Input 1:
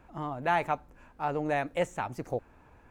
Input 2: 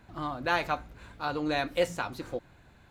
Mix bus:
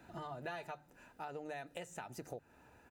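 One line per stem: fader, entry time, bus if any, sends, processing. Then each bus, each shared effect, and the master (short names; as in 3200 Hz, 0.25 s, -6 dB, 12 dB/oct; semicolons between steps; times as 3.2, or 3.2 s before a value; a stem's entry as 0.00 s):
-4.0 dB, 0.00 s, no send, high shelf 3400 Hz +10.5 dB; compressor, threshold -31 dBFS, peak gain reduction 10.5 dB
-2.5 dB, 0.3 ms, polarity flipped, no send, auto duck -18 dB, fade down 1.10 s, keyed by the first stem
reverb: off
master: notches 50/100/150 Hz; notch comb 1100 Hz; compressor 2:1, threshold -46 dBFS, peak gain reduction 8.5 dB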